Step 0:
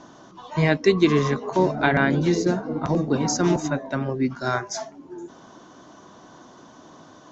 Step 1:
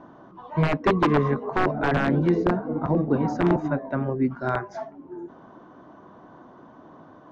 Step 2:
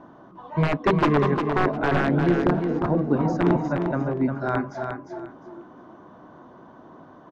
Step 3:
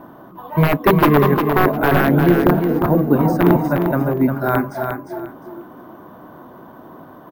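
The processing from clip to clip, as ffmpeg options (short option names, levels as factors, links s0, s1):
-af "aeval=exprs='(mod(3.35*val(0)+1,2)-1)/3.35':c=same,lowpass=1500"
-af "aecho=1:1:353|706|1059:0.501|0.11|0.0243"
-af "acrusher=samples=3:mix=1:aa=0.000001,volume=2.24"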